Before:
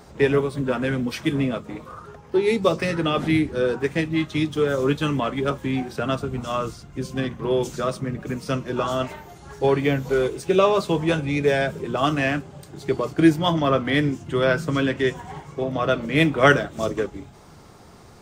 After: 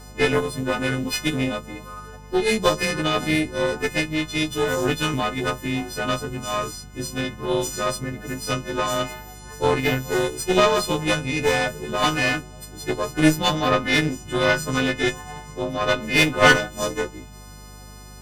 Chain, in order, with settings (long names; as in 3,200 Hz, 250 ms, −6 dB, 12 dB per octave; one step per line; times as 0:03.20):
every partial snapped to a pitch grid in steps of 3 semitones
harmonic generator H 4 −14 dB, 8 −29 dB, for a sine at −0.5 dBFS
mains hum 50 Hz, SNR 20 dB
level −1.5 dB